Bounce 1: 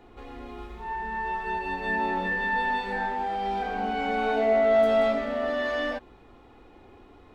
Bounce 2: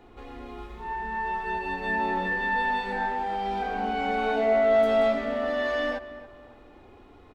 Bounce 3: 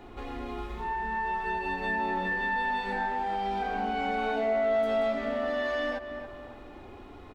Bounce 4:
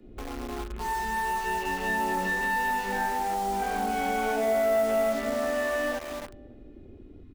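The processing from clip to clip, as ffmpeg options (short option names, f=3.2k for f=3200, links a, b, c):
-filter_complex "[0:a]asplit=2[a][b];[b]adelay=277,lowpass=f=2.4k:p=1,volume=-15dB,asplit=2[c][d];[d]adelay=277,lowpass=f=2.4k:p=1,volume=0.39,asplit=2[e][f];[f]adelay=277,lowpass=f=2.4k:p=1,volume=0.39,asplit=2[g][h];[h]adelay=277,lowpass=f=2.4k:p=1,volume=0.39[i];[a][c][e][g][i]amix=inputs=5:normalize=0"
-af "bandreject=f=470:w=12,acompressor=threshold=-38dB:ratio=2,volume=5dB"
-filter_complex "[0:a]afwtdn=0.01,acrossover=split=130|470|1300[a][b][c][d];[c]acrusher=bits=6:mix=0:aa=0.000001[e];[a][b][e][d]amix=inputs=4:normalize=0,volume=2dB"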